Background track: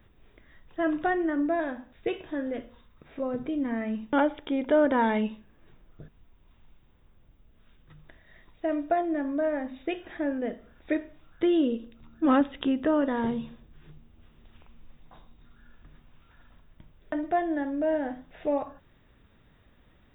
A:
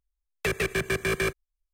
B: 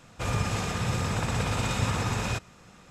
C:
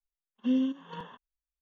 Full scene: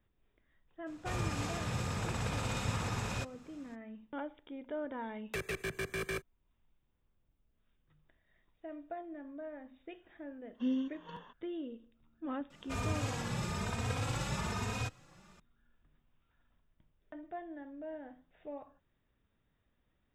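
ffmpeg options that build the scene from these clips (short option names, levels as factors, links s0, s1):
-filter_complex "[2:a]asplit=2[s0][s1];[0:a]volume=0.133[s2];[s1]asplit=2[s3][s4];[s4]adelay=3,afreqshift=1.1[s5];[s3][s5]amix=inputs=2:normalize=1[s6];[s0]atrim=end=2.9,asetpts=PTS-STARTPTS,volume=0.398,afade=t=in:d=0.02,afade=t=out:st=2.88:d=0.02,adelay=860[s7];[1:a]atrim=end=1.73,asetpts=PTS-STARTPTS,volume=0.282,afade=t=in:d=0.004:c=hsin,afade=t=out:st=1.726:d=0.004:c=hsin,adelay=215649S[s8];[3:a]atrim=end=1.61,asetpts=PTS-STARTPTS,volume=0.473,afade=t=in:d=0.004:c=hsin,afade=t=out:st=1.606:d=0.004:c=hsin,adelay=10160[s9];[s6]atrim=end=2.9,asetpts=PTS-STARTPTS,volume=0.562,afade=t=in:d=0.004:c=hsin,afade=t=out:st=2.896:d=0.004:c=hsin,adelay=12500[s10];[s2][s7][s8][s9][s10]amix=inputs=5:normalize=0"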